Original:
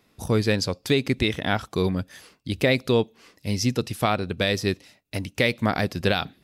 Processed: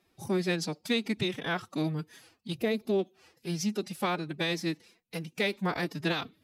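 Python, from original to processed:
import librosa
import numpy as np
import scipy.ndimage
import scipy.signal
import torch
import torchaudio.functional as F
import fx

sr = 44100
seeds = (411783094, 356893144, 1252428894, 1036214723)

y = fx.pitch_keep_formants(x, sr, semitones=9.0)
y = fx.spec_box(y, sr, start_s=2.56, length_s=0.43, low_hz=810.0, high_hz=10000.0, gain_db=-7)
y = y * 10.0 ** (-7.0 / 20.0)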